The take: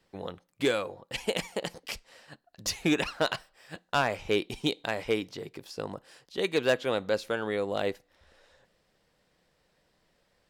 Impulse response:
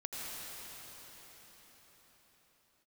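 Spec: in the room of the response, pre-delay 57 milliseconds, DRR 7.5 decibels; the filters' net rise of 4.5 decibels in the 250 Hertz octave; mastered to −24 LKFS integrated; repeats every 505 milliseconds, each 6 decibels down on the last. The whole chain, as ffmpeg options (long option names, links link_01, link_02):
-filter_complex "[0:a]equalizer=frequency=250:width_type=o:gain=6,aecho=1:1:505|1010|1515|2020|2525|3030:0.501|0.251|0.125|0.0626|0.0313|0.0157,asplit=2[link_01][link_02];[1:a]atrim=start_sample=2205,adelay=57[link_03];[link_02][link_03]afir=irnorm=-1:irlink=0,volume=-10dB[link_04];[link_01][link_04]amix=inputs=2:normalize=0,volume=4.5dB"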